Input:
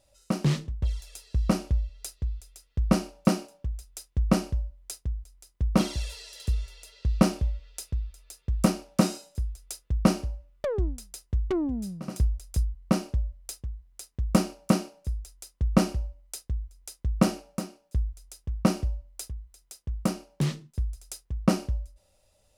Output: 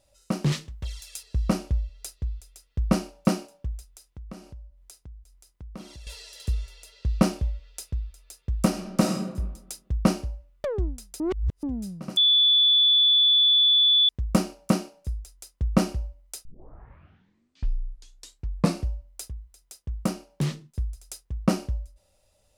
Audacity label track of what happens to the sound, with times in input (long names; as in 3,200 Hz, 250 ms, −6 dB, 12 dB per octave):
0.520000	1.230000	tilt shelving filter lows −6.5 dB
3.860000	6.070000	downward compressor 2 to 1, threshold −52 dBFS
8.670000	9.100000	thrown reverb, RT60 1.1 s, DRR 3.5 dB
11.200000	11.630000	reverse
12.170000	14.090000	beep over 3,460 Hz −15.5 dBFS
16.450000	16.450000	tape start 2.42 s